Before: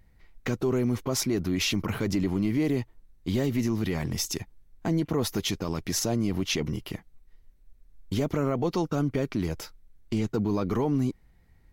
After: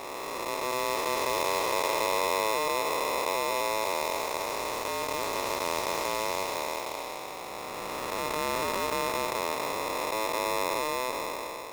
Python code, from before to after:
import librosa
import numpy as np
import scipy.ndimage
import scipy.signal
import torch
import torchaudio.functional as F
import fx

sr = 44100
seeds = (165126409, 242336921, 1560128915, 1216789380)

y = fx.spec_blur(x, sr, span_ms=1340.0)
y = y * np.sign(np.sin(2.0 * np.pi * 760.0 * np.arange(len(y)) / sr))
y = F.gain(torch.from_numpy(y), 3.0).numpy()